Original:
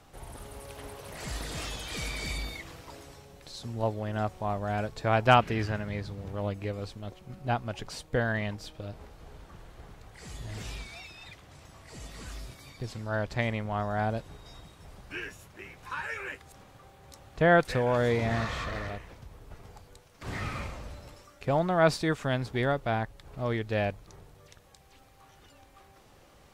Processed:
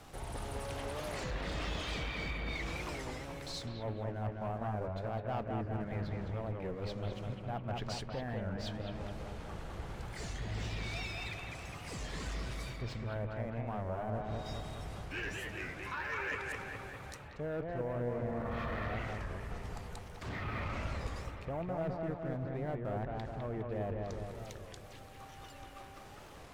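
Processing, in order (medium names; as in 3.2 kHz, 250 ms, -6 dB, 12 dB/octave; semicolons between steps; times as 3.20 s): low-pass that closes with the level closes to 1 kHz, closed at -26.5 dBFS; reverse; compression 6:1, threshold -39 dBFS, peak gain reduction 20 dB; reverse; waveshaping leveller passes 2; bucket-brigade echo 205 ms, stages 4096, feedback 60%, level -3 dB; on a send at -23 dB: reverberation RT60 0.55 s, pre-delay 5 ms; on the sum: warped record 33 1/3 rpm, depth 160 cents; trim -4 dB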